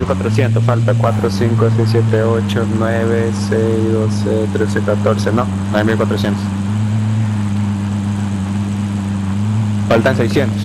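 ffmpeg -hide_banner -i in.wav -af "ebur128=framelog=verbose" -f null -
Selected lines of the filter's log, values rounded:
Integrated loudness:
  I:         -15.5 LUFS
  Threshold: -25.5 LUFS
Loudness range:
  LRA:         3.4 LU
  Threshold: -35.7 LUFS
  LRA low:   -17.7 LUFS
  LRA high:  -14.3 LUFS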